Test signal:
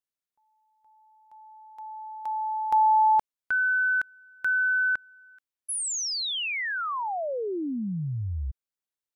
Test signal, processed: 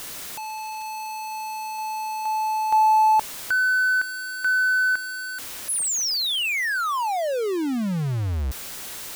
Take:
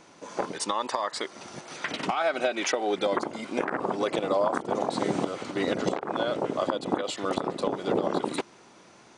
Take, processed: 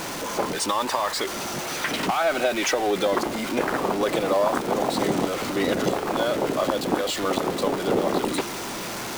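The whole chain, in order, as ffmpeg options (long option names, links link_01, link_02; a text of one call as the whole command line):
ffmpeg -i in.wav -af "aeval=exprs='val(0)+0.5*0.0398*sgn(val(0))':channel_layout=same,volume=1.5dB" out.wav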